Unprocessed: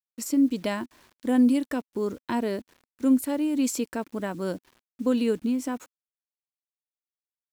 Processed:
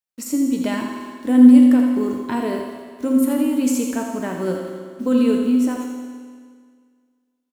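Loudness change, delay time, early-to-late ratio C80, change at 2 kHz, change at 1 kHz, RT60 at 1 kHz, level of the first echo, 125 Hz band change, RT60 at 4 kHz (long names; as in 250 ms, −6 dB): +8.5 dB, 84 ms, 3.0 dB, +5.0 dB, +5.5 dB, 1.9 s, −8.0 dB, +5.0 dB, 1.8 s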